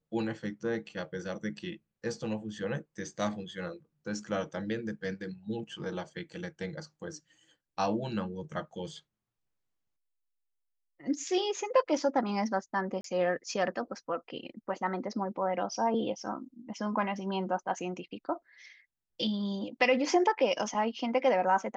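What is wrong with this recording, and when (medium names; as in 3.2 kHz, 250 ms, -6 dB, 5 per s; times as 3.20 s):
13.01–13.04 s: dropout 33 ms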